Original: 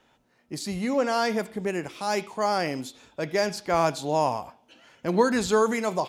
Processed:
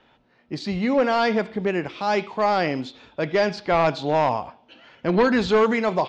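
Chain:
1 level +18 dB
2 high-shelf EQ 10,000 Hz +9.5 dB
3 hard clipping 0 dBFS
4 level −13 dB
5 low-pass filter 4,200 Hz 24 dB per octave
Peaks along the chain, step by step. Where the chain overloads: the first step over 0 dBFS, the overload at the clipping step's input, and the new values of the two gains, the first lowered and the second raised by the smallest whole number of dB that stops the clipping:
+9.5, +9.5, 0.0, −13.0, −11.5 dBFS
step 1, 9.5 dB
step 1 +8 dB, step 4 −3 dB

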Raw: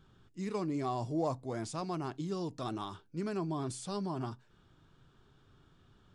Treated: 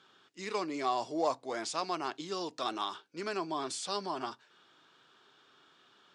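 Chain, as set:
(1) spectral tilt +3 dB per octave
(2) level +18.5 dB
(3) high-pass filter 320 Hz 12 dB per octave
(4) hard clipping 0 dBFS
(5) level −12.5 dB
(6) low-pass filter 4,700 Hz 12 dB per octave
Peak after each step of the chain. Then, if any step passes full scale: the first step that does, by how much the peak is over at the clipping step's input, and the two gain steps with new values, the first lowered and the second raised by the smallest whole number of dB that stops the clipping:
−23.5, −5.0, −5.0, −5.0, −17.5, −18.0 dBFS
no step passes full scale

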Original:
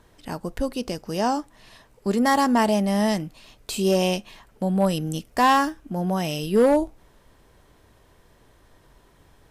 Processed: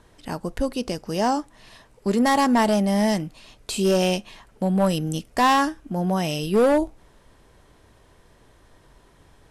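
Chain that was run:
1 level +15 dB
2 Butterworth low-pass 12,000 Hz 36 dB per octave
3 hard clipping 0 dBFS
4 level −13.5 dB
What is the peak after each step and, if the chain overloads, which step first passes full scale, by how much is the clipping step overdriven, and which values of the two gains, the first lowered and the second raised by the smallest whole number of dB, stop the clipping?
+4.5, +4.5, 0.0, −13.5 dBFS
step 1, 4.5 dB
step 1 +10 dB, step 4 −8.5 dB

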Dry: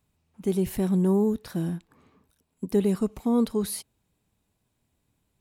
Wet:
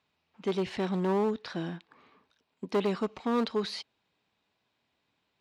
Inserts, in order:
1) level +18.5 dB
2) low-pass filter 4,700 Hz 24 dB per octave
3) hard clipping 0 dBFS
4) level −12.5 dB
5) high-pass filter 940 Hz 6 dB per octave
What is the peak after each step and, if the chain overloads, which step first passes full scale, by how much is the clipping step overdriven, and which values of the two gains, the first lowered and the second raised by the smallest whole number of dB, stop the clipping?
+6.0, +6.0, 0.0, −12.5, −16.5 dBFS
step 1, 6.0 dB
step 1 +12.5 dB, step 4 −6.5 dB

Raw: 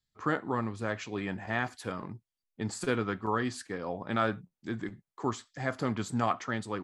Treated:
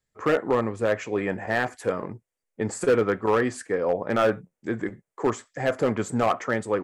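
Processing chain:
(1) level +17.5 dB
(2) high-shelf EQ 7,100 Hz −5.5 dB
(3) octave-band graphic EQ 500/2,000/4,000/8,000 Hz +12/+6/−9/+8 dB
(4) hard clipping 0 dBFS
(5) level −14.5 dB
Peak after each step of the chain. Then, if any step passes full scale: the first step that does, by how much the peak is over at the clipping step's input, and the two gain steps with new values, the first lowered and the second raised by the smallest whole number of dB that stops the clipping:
+4.0, +4.0, +9.0, 0.0, −14.5 dBFS
step 1, 9.0 dB
step 1 +8.5 dB, step 5 −5.5 dB

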